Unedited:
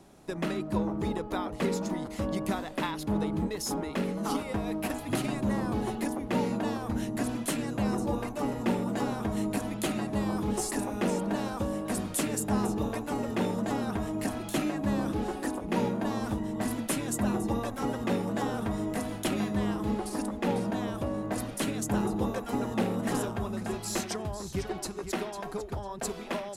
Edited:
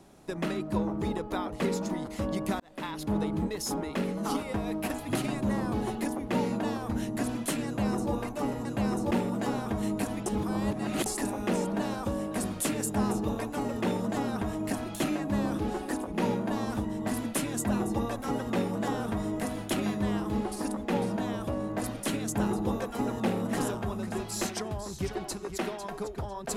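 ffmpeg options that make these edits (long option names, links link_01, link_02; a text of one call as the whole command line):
ffmpeg -i in.wav -filter_complex "[0:a]asplit=6[link_01][link_02][link_03][link_04][link_05][link_06];[link_01]atrim=end=2.6,asetpts=PTS-STARTPTS,afade=type=out:start_time=2.596:duration=0.004:curve=hsin[link_07];[link_02]atrim=start=2.6:end=8.652,asetpts=PTS-STARTPTS,afade=type=in:duration=0.43[link_08];[link_03]atrim=start=7.658:end=8.122[link_09];[link_04]atrim=start=8.648:end=9.802[link_10];[link_05]atrim=start=9.798:end=10.602,asetpts=PTS-STARTPTS,areverse[link_11];[link_06]atrim=start=10.598[link_12];[link_07][link_08]concat=n=2:v=0:a=1[link_13];[link_13][link_09]acrossfade=duration=0.004:curve1=hsin:curve2=hsin[link_14];[link_14][link_10]acrossfade=duration=0.004:curve1=hsin:curve2=hsin[link_15];[link_15][link_11]acrossfade=duration=0.004:curve1=hsin:curve2=hsin[link_16];[link_16][link_12]acrossfade=duration=0.004:curve1=hsin:curve2=hsin" out.wav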